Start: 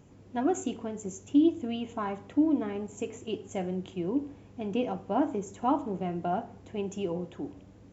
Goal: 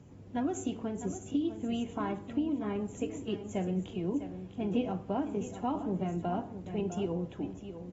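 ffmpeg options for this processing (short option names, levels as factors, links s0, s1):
-filter_complex "[0:a]highpass=f=65:p=1,lowshelf=f=250:g=9.5,acrossover=split=130|3000[s0][s1][s2];[s1]acompressor=threshold=0.0501:ratio=8[s3];[s0][s3][s2]amix=inputs=3:normalize=0,asplit=2[s4][s5];[s5]aecho=0:1:653:0.282[s6];[s4][s6]amix=inputs=2:normalize=0,volume=0.708" -ar 44100 -c:a aac -b:a 24k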